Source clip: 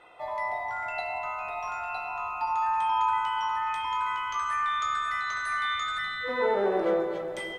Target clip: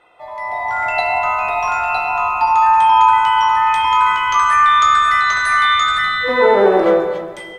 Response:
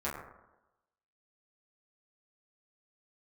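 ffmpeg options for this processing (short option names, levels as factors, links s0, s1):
-filter_complex "[0:a]dynaudnorm=f=120:g=11:m=5.62,asplit=2[s0][s1];[1:a]atrim=start_sample=2205,adelay=130[s2];[s1][s2]afir=irnorm=-1:irlink=0,volume=0.112[s3];[s0][s3]amix=inputs=2:normalize=0,volume=1.12"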